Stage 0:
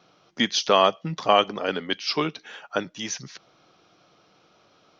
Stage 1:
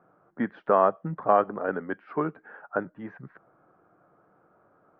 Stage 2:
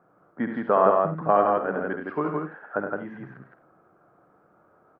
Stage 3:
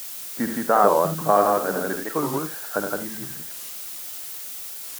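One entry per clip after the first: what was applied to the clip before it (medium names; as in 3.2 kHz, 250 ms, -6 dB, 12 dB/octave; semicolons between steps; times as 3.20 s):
Chebyshev low-pass 1.6 kHz, order 4; trim -1.5 dB
multi-tap echo 69/101/166/217/250 ms -6.5/-10/-3/-14.5/-18.5 dB
added noise blue -37 dBFS; warped record 45 rpm, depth 250 cents; trim +2 dB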